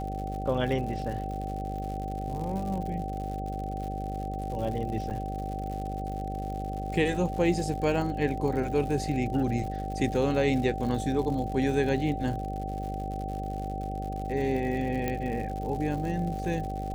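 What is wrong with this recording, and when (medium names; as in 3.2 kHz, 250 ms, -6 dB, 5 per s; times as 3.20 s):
buzz 50 Hz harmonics 13 -35 dBFS
crackle 130 per s -36 dBFS
whine 770 Hz -35 dBFS
5.10–5.11 s: dropout 5.6 ms
15.08 s: pop -16 dBFS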